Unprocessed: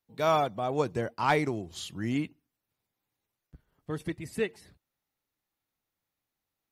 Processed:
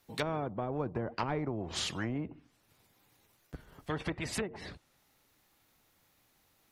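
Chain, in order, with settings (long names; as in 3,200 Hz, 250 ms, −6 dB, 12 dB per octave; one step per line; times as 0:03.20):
treble cut that deepens with the level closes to 390 Hz, closed at −26.5 dBFS
every bin compressed towards the loudest bin 2 to 1
level +1.5 dB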